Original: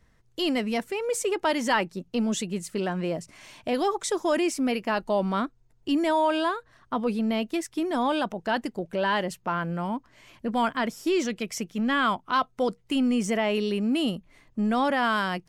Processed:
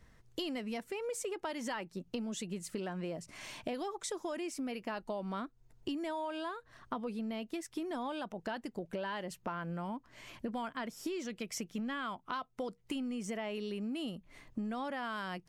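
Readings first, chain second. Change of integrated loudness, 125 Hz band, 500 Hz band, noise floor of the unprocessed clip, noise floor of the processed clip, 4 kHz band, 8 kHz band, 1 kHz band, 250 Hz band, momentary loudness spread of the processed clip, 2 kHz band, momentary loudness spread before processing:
-13.0 dB, -10.5 dB, -13.0 dB, -62 dBFS, -66 dBFS, -12.5 dB, -9.5 dB, -14.0 dB, -12.5 dB, 5 LU, -13.5 dB, 8 LU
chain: compressor 10:1, threshold -37 dBFS, peak gain reduction 18 dB; gain +1 dB

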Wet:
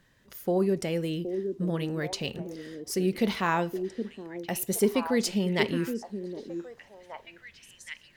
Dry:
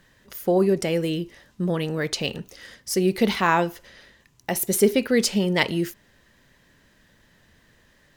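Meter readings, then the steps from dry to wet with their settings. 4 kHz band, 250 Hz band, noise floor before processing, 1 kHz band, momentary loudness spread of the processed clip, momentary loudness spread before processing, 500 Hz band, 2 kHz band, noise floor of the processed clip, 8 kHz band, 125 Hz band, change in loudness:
-7.0 dB, -4.5 dB, -60 dBFS, -6.0 dB, 19 LU, 15 LU, -5.5 dB, -6.5 dB, -59 dBFS, -7.0 dB, -4.0 dB, -6.5 dB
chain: bell 130 Hz +3 dB 2.1 oct; on a send: delay with a stepping band-pass 0.769 s, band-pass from 320 Hz, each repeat 1.4 oct, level -4 dB; on the sum: gain -7 dB

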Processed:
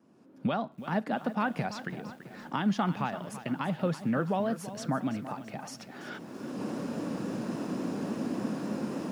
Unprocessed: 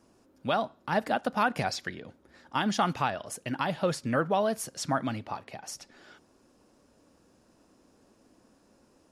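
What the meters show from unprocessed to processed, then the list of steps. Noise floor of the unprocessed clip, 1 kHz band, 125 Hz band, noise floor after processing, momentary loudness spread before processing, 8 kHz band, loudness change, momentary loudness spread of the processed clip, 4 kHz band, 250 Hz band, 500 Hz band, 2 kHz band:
-64 dBFS, -4.0 dB, +2.5 dB, -54 dBFS, 13 LU, -7.5 dB, -3.0 dB, 12 LU, -6.5 dB, +4.0 dB, -3.0 dB, -4.0 dB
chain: recorder AGC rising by 25 dB/s; vibrato 3.6 Hz 37 cents; HPF 160 Hz 24 dB/oct; tone controls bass +12 dB, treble -9 dB; lo-fi delay 0.334 s, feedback 55%, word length 8-bit, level -13 dB; gain -5 dB

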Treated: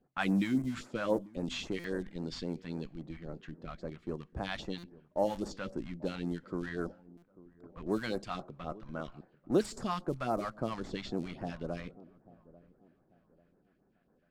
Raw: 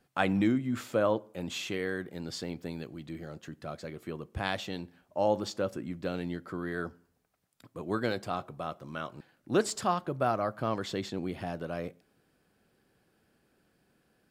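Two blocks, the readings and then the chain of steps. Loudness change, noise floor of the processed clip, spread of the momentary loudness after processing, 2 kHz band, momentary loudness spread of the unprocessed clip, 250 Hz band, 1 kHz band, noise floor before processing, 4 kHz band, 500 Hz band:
-3.5 dB, -71 dBFS, 13 LU, -4.5 dB, 14 LU, -1.5 dB, -6.0 dB, -73 dBFS, -4.0 dB, -4.0 dB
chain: in parallel at -11 dB: Schmitt trigger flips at -34.5 dBFS; on the sum: de-esser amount 95%; bell 95 Hz -13 dB 0.66 oct; phaser stages 2, 3.7 Hz, lowest notch 360–3200 Hz; dark delay 0.842 s, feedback 34%, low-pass 870 Hz, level -19.5 dB; low-pass opened by the level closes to 1700 Hz, open at -28 dBFS; stuck buffer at 1.79/4.78/7.17, samples 256, times 8

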